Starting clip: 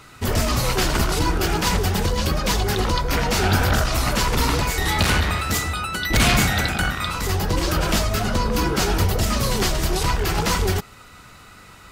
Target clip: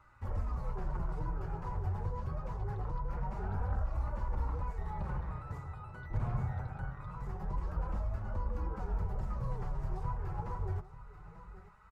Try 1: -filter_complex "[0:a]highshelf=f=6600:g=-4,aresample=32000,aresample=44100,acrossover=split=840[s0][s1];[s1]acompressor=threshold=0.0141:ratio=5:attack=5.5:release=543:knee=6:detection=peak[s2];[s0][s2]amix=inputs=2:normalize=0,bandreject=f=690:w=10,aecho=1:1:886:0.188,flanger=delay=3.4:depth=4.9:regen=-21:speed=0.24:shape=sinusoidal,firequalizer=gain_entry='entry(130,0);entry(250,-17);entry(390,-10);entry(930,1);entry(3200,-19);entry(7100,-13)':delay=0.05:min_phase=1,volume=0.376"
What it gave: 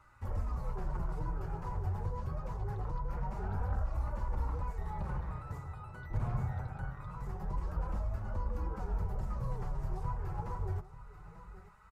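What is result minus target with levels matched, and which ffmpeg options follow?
8 kHz band +4.0 dB
-filter_complex "[0:a]highshelf=f=6600:g=-14,aresample=32000,aresample=44100,acrossover=split=840[s0][s1];[s1]acompressor=threshold=0.0141:ratio=5:attack=5.5:release=543:knee=6:detection=peak[s2];[s0][s2]amix=inputs=2:normalize=0,bandreject=f=690:w=10,aecho=1:1:886:0.188,flanger=delay=3.4:depth=4.9:regen=-21:speed=0.24:shape=sinusoidal,firequalizer=gain_entry='entry(130,0);entry(250,-17);entry(390,-10);entry(930,1);entry(3200,-19);entry(7100,-13)':delay=0.05:min_phase=1,volume=0.376"

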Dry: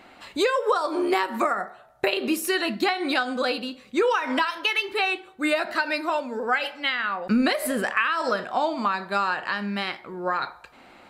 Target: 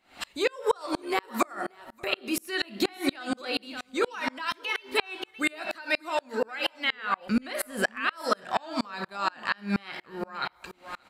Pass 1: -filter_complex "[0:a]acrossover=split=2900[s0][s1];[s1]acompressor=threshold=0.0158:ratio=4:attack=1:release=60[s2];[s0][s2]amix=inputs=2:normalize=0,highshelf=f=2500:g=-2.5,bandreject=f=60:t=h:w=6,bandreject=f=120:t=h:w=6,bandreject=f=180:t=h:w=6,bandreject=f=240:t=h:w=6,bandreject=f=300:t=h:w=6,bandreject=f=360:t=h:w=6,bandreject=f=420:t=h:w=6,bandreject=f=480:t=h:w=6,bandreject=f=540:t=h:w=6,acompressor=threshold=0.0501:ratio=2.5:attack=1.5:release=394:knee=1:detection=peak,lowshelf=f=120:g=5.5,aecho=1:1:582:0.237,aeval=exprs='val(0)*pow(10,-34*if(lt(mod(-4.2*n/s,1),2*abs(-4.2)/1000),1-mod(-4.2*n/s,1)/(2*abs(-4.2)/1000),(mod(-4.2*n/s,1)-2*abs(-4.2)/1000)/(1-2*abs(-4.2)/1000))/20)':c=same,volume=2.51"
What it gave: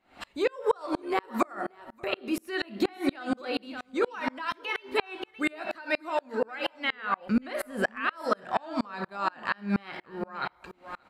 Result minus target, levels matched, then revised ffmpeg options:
4 kHz band -5.0 dB
-filter_complex "[0:a]acrossover=split=2900[s0][s1];[s1]acompressor=threshold=0.0158:ratio=4:attack=1:release=60[s2];[s0][s2]amix=inputs=2:normalize=0,highshelf=f=2500:g=9.5,bandreject=f=60:t=h:w=6,bandreject=f=120:t=h:w=6,bandreject=f=180:t=h:w=6,bandreject=f=240:t=h:w=6,bandreject=f=300:t=h:w=6,bandreject=f=360:t=h:w=6,bandreject=f=420:t=h:w=6,bandreject=f=480:t=h:w=6,bandreject=f=540:t=h:w=6,acompressor=threshold=0.0501:ratio=2.5:attack=1.5:release=394:knee=1:detection=peak,lowshelf=f=120:g=5.5,aecho=1:1:582:0.237,aeval=exprs='val(0)*pow(10,-34*if(lt(mod(-4.2*n/s,1),2*abs(-4.2)/1000),1-mod(-4.2*n/s,1)/(2*abs(-4.2)/1000),(mod(-4.2*n/s,1)-2*abs(-4.2)/1000)/(1-2*abs(-4.2)/1000))/20)':c=same,volume=2.51"

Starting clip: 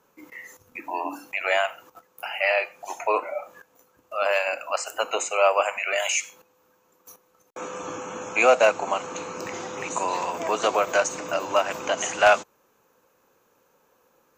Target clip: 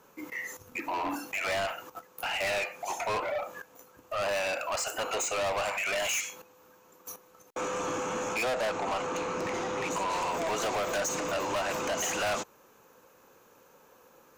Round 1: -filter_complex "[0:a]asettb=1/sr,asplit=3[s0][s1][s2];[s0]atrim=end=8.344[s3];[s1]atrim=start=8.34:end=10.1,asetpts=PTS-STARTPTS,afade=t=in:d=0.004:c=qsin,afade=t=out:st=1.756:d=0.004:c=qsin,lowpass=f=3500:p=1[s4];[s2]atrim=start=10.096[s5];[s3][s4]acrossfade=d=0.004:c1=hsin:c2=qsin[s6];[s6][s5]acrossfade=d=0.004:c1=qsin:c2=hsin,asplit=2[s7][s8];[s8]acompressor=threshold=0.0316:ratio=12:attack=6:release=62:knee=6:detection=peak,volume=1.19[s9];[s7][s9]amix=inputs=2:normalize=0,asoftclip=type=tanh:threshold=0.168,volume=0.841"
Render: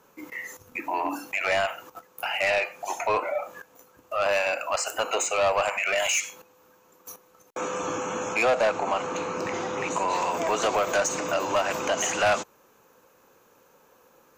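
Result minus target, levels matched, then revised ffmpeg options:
saturation: distortion -7 dB
-filter_complex "[0:a]asettb=1/sr,asplit=3[s0][s1][s2];[s0]atrim=end=8.344[s3];[s1]atrim=start=8.34:end=10.1,asetpts=PTS-STARTPTS,afade=t=in:d=0.004:c=qsin,afade=t=out:st=1.756:d=0.004:c=qsin,lowpass=f=3500:p=1[s4];[s2]atrim=start=10.096[s5];[s3][s4]acrossfade=d=0.004:c1=hsin:c2=qsin[s6];[s6][s5]acrossfade=d=0.004:c1=qsin:c2=hsin,asplit=2[s7][s8];[s8]acompressor=threshold=0.0316:ratio=12:attack=6:release=62:knee=6:detection=peak,volume=1.19[s9];[s7][s9]amix=inputs=2:normalize=0,asoftclip=type=tanh:threshold=0.0501,volume=0.841"

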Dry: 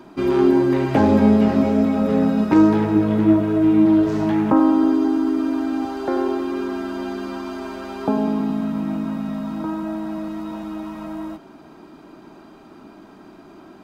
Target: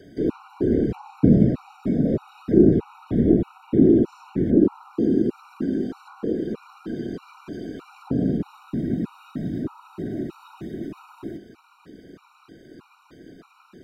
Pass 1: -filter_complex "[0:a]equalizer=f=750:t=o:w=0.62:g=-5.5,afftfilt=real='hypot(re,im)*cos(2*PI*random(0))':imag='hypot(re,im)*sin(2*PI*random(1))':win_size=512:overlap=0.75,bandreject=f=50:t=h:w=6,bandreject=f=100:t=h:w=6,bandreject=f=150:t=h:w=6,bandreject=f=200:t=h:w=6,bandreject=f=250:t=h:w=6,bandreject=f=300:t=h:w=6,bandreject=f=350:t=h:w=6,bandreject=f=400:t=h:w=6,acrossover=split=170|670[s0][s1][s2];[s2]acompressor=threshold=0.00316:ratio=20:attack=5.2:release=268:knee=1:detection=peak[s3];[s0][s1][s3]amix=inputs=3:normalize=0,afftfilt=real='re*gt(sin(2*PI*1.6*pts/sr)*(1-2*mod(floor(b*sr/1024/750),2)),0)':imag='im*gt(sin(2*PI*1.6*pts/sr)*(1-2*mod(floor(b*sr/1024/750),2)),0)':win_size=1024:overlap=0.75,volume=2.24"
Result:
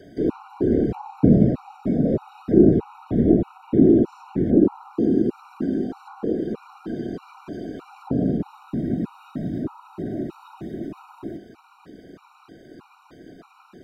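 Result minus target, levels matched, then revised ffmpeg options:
1 kHz band +3.5 dB
-filter_complex "[0:a]equalizer=f=750:t=o:w=0.62:g=-15.5,afftfilt=real='hypot(re,im)*cos(2*PI*random(0))':imag='hypot(re,im)*sin(2*PI*random(1))':win_size=512:overlap=0.75,bandreject=f=50:t=h:w=6,bandreject=f=100:t=h:w=6,bandreject=f=150:t=h:w=6,bandreject=f=200:t=h:w=6,bandreject=f=250:t=h:w=6,bandreject=f=300:t=h:w=6,bandreject=f=350:t=h:w=6,bandreject=f=400:t=h:w=6,acrossover=split=170|670[s0][s1][s2];[s2]acompressor=threshold=0.00316:ratio=20:attack=5.2:release=268:knee=1:detection=peak[s3];[s0][s1][s3]amix=inputs=3:normalize=0,afftfilt=real='re*gt(sin(2*PI*1.6*pts/sr)*(1-2*mod(floor(b*sr/1024/750),2)),0)':imag='im*gt(sin(2*PI*1.6*pts/sr)*(1-2*mod(floor(b*sr/1024/750),2)),0)':win_size=1024:overlap=0.75,volume=2.24"

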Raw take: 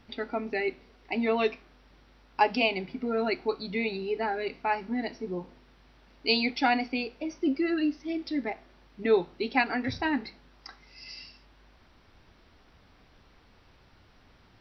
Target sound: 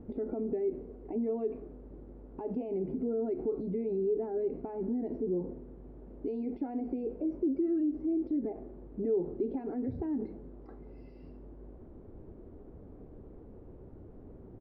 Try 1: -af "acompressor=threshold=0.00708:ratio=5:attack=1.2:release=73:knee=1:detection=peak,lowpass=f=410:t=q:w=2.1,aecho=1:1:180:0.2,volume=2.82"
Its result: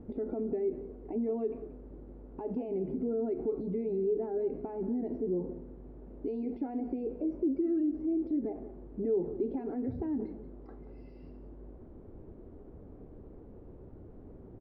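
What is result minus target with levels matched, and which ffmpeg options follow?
echo-to-direct +8 dB
-af "acompressor=threshold=0.00708:ratio=5:attack=1.2:release=73:knee=1:detection=peak,lowpass=f=410:t=q:w=2.1,aecho=1:1:180:0.0794,volume=2.82"

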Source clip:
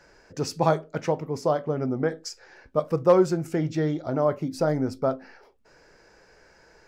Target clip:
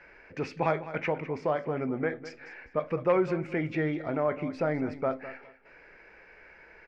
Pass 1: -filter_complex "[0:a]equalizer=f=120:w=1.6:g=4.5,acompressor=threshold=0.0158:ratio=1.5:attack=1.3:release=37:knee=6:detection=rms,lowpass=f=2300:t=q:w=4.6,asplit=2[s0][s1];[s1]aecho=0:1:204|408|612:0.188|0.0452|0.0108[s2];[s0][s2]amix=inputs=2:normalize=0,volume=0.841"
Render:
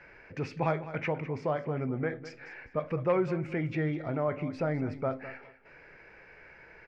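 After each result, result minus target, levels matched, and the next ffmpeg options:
125 Hz band +5.0 dB; compression: peak gain reduction +2.5 dB
-filter_complex "[0:a]equalizer=f=120:w=1.6:g=-5,acompressor=threshold=0.0158:ratio=1.5:attack=1.3:release=37:knee=6:detection=rms,lowpass=f=2300:t=q:w=4.6,asplit=2[s0][s1];[s1]aecho=0:1:204|408|612:0.188|0.0452|0.0108[s2];[s0][s2]amix=inputs=2:normalize=0,volume=0.841"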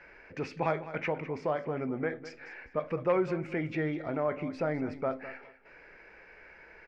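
compression: peak gain reduction +2.5 dB
-filter_complex "[0:a]equalizer=f=120:w=1.6:g=-5,acompressor=threshold=0.0398:ratio=1.5:attack=1.3:release=37:knee=6:detection=rms,lowpass=f=2300:t=q:w=4.6,asplit=2[s0][s1];[s1]aecho=0:1:204|408|612:0.188|0.0452|0.0108[s2];[s0][s2]amix=inputs=2:normalize=0,volume=0.841"

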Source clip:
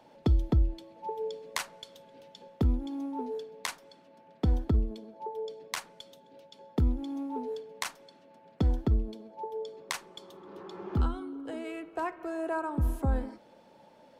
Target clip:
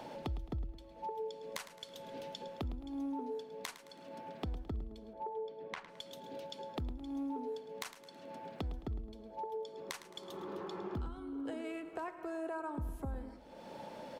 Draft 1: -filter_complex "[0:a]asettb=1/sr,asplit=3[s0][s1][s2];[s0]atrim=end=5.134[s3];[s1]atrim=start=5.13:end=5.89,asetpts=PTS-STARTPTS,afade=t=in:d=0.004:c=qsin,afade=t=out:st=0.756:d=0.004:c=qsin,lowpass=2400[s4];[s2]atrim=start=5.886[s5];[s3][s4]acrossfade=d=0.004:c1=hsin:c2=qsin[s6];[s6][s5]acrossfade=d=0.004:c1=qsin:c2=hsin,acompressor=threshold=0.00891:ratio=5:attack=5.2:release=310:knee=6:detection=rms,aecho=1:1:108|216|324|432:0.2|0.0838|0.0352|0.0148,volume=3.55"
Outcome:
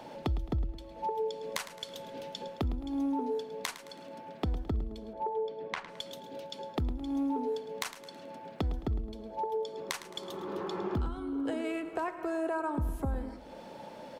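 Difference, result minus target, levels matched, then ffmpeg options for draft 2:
compression: peak gain reduction -7.5 dB
-filter_complex "[0:a]asettb=1/sr,asplit=3[s0][s1][s2];[s0]atrim=end=5.134[s3];[s1]atrim=start=5.13:end=5.89,asetpts=PTS-STARTPTS,afade=t=in:d=0.004:c=qsin,afade=t=out:st=0.756:d=0.004:c=qsin,lowpass=2400[s4];[s2]atrim=start=5.886[s5];[s3][s4]acrossfade=d=0.004:c1=hsin:c2=qsin[s6];[s6][s5]acrossfade=d=0.004:c1=qsin:c2=hsin,acompressor=threshold=0.00299:ratio=5:attack=5.2:release=310:knee=6:detection=rms,aecho=1:1:108|216|324|432:0.2|0.0838|0.0352|0.0148,volume=3.55"

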